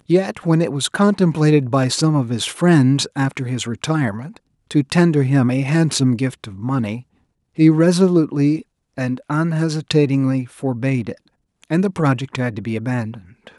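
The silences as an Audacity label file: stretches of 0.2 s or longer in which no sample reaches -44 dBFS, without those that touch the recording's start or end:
4.370000	4.710000	silence
7.030000	7.560000	silence
8.620000	8.970000	silence
11.280000	11.620000	silence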